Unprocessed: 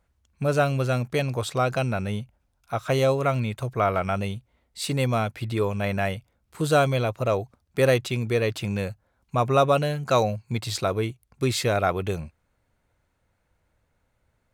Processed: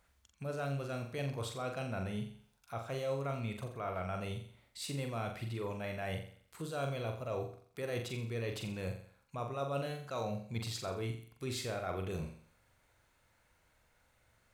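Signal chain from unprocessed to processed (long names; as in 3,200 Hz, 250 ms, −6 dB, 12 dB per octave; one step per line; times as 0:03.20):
reversed playback
downward compressor 6 to 1, threshold −32 dBFS, peak gain reduction 17 dB
reversed playback
flutter between parallel walls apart 7.4 metres, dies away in 0.48 s
one half of a high-frequency compander encoder only
level −5 dB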